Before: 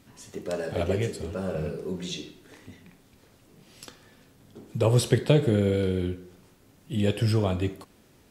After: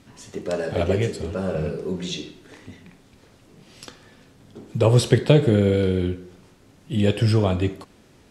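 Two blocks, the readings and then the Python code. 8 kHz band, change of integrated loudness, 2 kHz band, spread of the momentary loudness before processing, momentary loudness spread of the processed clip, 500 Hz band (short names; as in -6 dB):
+2.0 dB, +5.0 dB, +5.0 dB, 16 LU, 16 LU, +5.0 dB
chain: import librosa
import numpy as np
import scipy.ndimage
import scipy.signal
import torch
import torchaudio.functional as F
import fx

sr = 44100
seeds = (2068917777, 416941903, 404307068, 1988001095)

y = scipy.signal.sosfilt(scipy.signal.bessel(2, 8100.0, 'lowpass', norm='mag', fs=sr, output='sos'), x)
y = y * 10.0 ** (5.0 / 20.0)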